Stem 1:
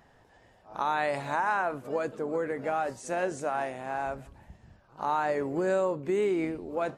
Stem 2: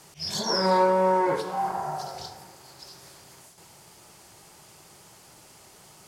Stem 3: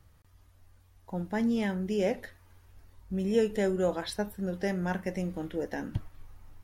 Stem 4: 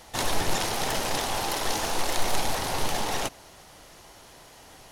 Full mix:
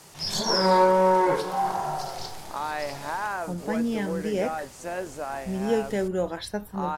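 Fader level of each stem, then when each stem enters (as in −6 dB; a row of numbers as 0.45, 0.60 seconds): −2.5, +2.0, +1.0, −17.5 decibels; 1.75, 0.00, 2.35, 0.00 seconds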